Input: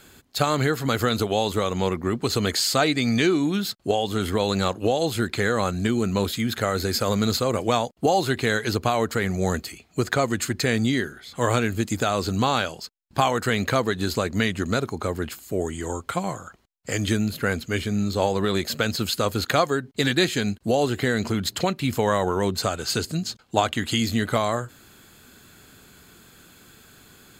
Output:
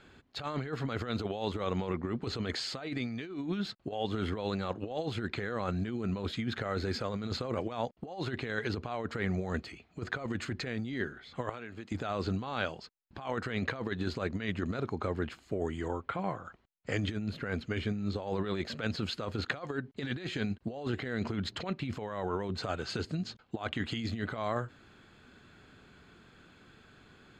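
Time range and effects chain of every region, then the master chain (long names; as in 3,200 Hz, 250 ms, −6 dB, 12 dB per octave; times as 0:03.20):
0:11.49–0:11.92: high-pass filter 1,000 Hz 6 dB per octave + spectral tilt −2 dB per octave + downward compressor 5 to 1, threshold −33 dBFS
0:15.88–0:16.45: linear-phase brick-wall low-pass 13,000 Hz + bass and treble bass −2 dB, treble −10 dB
whole clip: low-pass filter 3,100 Hz 12 dB per octave; compressor whose output falls as the input rises −25 dBFS, ratio −0.5; level −8 dB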